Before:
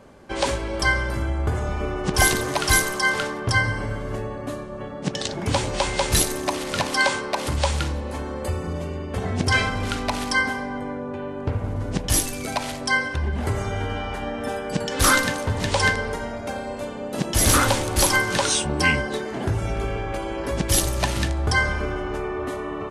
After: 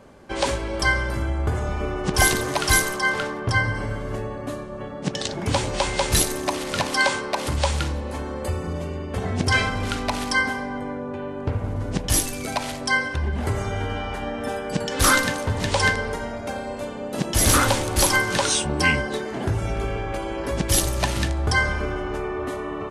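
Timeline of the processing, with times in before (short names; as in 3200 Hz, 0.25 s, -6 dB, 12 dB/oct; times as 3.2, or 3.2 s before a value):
2.96–3.75 high shelf 3900 Hz -6.5 dB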